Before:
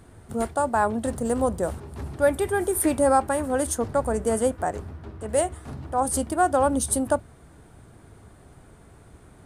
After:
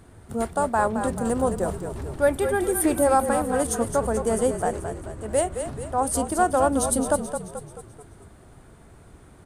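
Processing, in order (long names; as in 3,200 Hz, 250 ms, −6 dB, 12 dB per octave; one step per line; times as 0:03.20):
echo with shifted repeats 217 ms, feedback 51%, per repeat −38 Hz, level −8 dB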